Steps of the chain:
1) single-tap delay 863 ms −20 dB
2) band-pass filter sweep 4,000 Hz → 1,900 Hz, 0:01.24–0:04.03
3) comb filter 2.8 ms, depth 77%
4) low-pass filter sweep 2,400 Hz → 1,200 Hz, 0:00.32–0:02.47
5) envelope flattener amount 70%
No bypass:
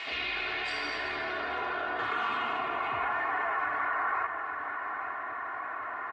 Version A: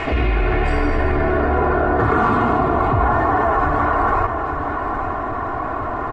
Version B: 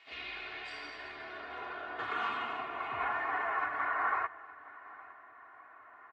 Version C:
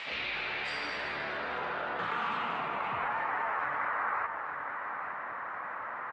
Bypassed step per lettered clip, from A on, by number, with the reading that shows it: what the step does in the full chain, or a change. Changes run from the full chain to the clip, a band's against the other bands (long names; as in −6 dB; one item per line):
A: 2, 125 Hz band +18.0 dB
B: 5, change in crest factor +5.0 dB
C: 3, 125 Hz band +4.5 dB